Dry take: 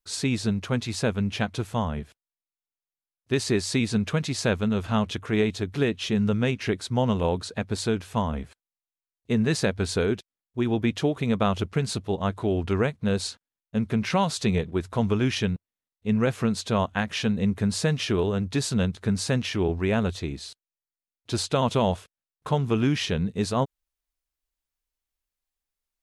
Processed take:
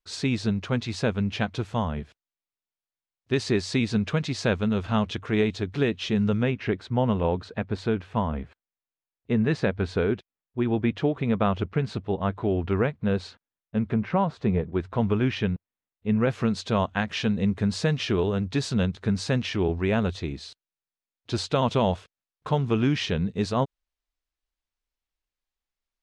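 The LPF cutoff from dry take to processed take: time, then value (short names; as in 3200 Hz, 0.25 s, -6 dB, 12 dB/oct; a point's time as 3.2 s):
5200 Hz
from 6.43 s 2600 Hz
from 13.94 s 1400 Hz
from 14.73 s 2800 Hz
from 16.3 s 5300 Hz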